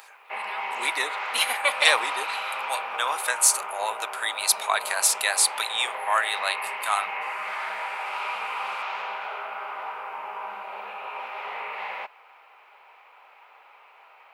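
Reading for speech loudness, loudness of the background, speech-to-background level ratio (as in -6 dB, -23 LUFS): -24.0 LUFS, -32.0 LUFS, 8.0 dB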